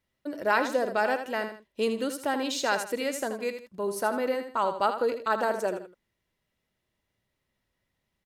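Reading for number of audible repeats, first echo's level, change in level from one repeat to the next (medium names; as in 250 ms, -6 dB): 2, -9.0 dB, -10.0 dB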